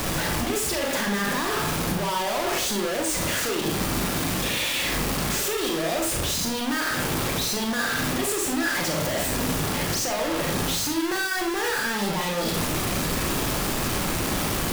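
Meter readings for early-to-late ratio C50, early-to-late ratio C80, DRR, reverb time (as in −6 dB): 5.0 dB, 10.5 dB, 1.0 dB, 0.45 s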